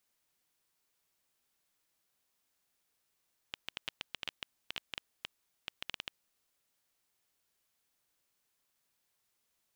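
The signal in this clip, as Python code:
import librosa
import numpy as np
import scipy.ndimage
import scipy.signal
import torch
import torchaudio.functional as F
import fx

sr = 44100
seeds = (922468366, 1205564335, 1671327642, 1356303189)

y = fx.geiger_clicks(sr, seeds[0], length_s=3.21, per_s=7.3, level_db=-19.5)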